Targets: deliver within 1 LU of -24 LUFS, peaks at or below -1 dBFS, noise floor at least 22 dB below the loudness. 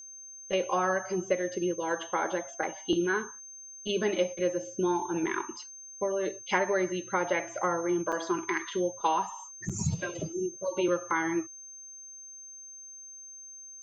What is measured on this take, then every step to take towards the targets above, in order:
dropouts 2; longest dropout 5.8 ms; steady tone 6.3 kHz; tone level -44 dBFS; loudness -30.5 LUFS; peak level -12.0 dBFS; loudness target -24.0 LUFS
-> interpolate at 8.12/9.69 s, 5.8 ms; band-stop 6.3 kHz, Q 30; trim +6.5 dB

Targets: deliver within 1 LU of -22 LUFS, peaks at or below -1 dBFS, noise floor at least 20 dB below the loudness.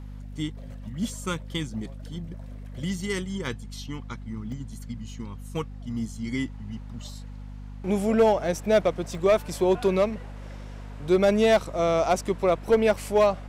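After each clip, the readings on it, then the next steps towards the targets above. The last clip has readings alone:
dropouts 4; longest dropout 1.1 ms; hum 50 Hz; highest harmonic 250 Hz; hum level -37 dBFS; loudness -25.5 LUFS; peak level -12.5 dBFS; loudness target -22.0 LUFS
-> interpolate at 4.52/8.56/9.15/12.94 s, 1.1 ms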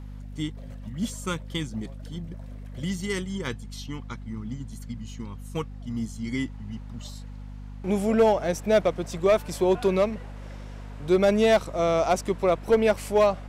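dropouts 0; hum 50 Hz; highest harmonic 250 Hz; hum level -37 dBFS
-> de-hum 50 Hz, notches 5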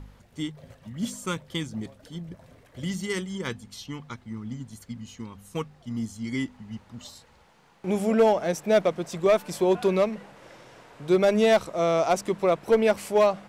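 hum not found; loudness -25.5 LUFS; peak level -12.0 dBFS; loudness target -22.0 LUFS
-> trim +3.5 dB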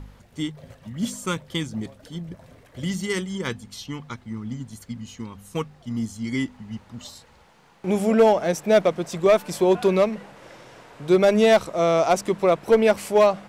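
loudness -22.0 LUFS; peak level -8.5 dBFS; noise floor -54 dBFS

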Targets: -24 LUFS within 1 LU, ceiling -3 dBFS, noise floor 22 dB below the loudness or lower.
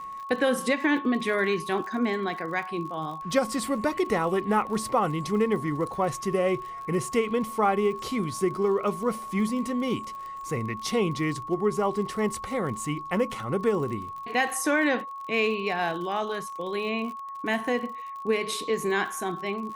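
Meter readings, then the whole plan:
tick rate 48 per s; steady tone 1.1 kHz; tone level -35 dBFS; loudness -27.5 LUFS; peak level -9.5 dBFS; loudness target -24.0 LUFS
-> de-click; band-stop 1.1 kHz, Q 30; trim +3.5 dB

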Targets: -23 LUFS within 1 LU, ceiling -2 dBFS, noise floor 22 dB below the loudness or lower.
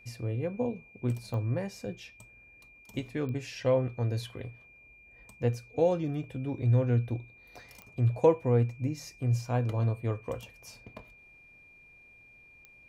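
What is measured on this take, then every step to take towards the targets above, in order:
clicks found 4; steady tone 2.4 kHz; tone level -54 dBFS; loudness -30.5 LUFS; peak level -10.0 dBFS; loudness target -23.0 LUFS
-> de-click; band-stop 2.4 kHz, Q 30; trim +7.5 dB

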